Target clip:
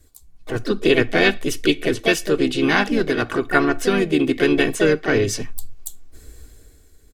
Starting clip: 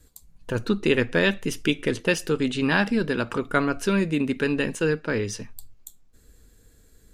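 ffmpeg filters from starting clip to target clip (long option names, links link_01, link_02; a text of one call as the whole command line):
ffmpeg -i in.wav -filter_complex "[0:a]asplit=3[link_01][link_02][link_03];[link_02]asetrate=37084,aresample=44100,atempo=1.18921,volume=-15dB[link_04];[link_03]asetrate=55563,aresample=44100,atempo=0.793701,volume=-6dB[link_05];[link_01][link_04][link_05]amix=inputs=3:normalize=0,aecho=1:1:2.7:0.47,dynaudnorm=framelen=110:gausssize=13:maxgain=11.5dB,volume=-1dB" out.wav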